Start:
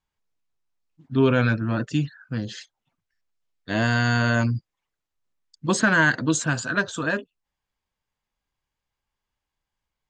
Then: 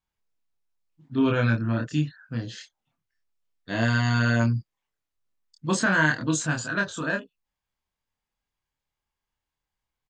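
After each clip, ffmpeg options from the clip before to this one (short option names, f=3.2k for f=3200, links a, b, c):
-filter_complex "[0:a]asplit=2[a][b];[b]adelay=26,volume=-2.5dB[c];[a][c]amix=inputs=2:normalize=0,volume=-4.5dB"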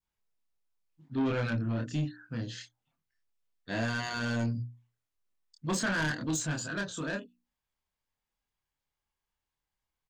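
-af "bandreject=f=60:t=h:w=6,bandreject=f=120:t=h:w=6,bandreject=f=180:t=h:w=6,bandreject=f=240:t=h:w=6,bandreject=f=300:t=h:w=6,asoftclip=type=tanh:threshold=-22dB,adynamicequalizer=threshold=0.00708:dfrequency=1300:dqfactor=0.81:tfrequency=1300:tqfactor=0.81:attack=5:release=100:ratio=0.375:range=3:mode=cutabove:tftype=bell,volume=-2.5dB"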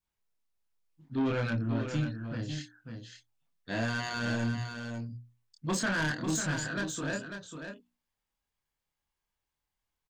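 -af "aecho=1:1:545:0.422"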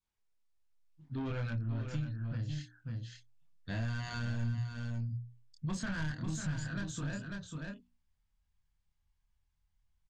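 -af "lowpass=8.6k,asubboost=boost=8.5:cutoff=130,acompressor=threshold=-34dB:ratio=2.5,volume=-2.5dB"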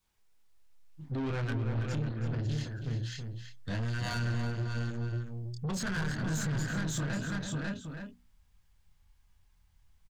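-filter_complex "[0:a]asplit=2[a][b];[b]alimiter=level_in=12.5dB:limit=-24dB:level=0:latency=1:release=234,volume=-12.5dB,volume=-1.5dB[c];[a][c]amix=inputs=2:normalize=0,asoftclip=type=tanh:threshold=-37dB,asplit=2[d][e];[e]adelay=326.5,volume=-6dB,highshelf=f=4k:g=-7.35[f];[d][f]amix=inputs=2:normalize=0,volume=6.5dB"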